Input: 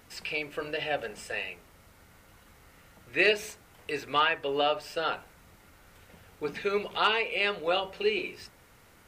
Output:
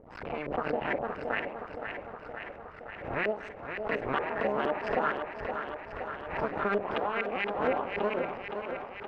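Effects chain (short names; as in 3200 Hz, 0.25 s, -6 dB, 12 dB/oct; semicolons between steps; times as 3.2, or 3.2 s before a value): cycle switcher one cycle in 2, muted; in parallel at -2 dB: limiter -22.5 dBFS, peak gain reduction 9.5 dB; on the sum: compressor, threshold -28 dBFS, peak gain reduction 10 dB; LFO low-pass saw up 4.3 Hz 470–2000 Hz; thinning echo 0.519 s, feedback 73%, high-pass 170 Hz, level -7 dB; backwards sustainer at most 72 dB/s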